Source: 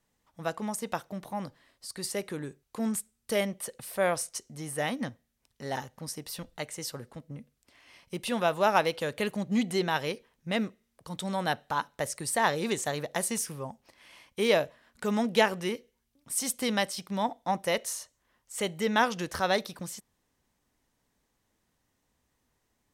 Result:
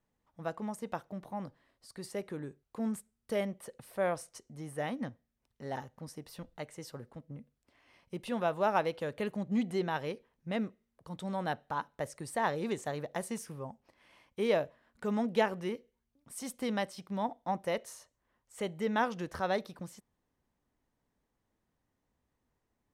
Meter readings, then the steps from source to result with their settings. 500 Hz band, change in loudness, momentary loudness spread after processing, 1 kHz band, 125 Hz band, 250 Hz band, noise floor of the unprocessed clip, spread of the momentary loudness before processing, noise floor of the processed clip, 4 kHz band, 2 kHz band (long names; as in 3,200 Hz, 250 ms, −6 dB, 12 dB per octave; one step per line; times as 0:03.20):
−4.0 dB, −5.0 dB, 16 LU, −5.0 dB, −3.5 dB, −3.5 dB, −77 dBFS, 15 LU, −83 dBFS, −11.5 dB, −8.0 dB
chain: high-shelf EQ 2,300 Hz −11.5 dB
level −3.5 dB